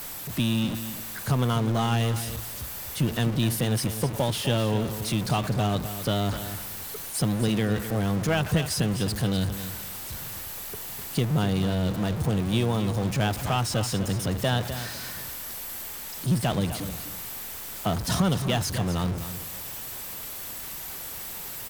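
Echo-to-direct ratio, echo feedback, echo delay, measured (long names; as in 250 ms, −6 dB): −11.0 dB, 21%, 253 ms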